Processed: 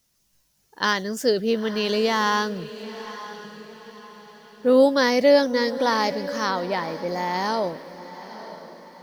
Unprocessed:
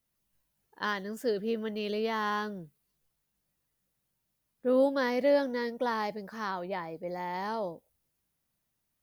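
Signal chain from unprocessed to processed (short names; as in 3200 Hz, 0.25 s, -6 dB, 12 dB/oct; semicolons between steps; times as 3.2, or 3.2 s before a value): bell 5700 Hz +10.5 dB 1.1 oct; on a send: diffused feedback echo 0.93 s, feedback 41%, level -14 dB; on the sum: gain +9 dB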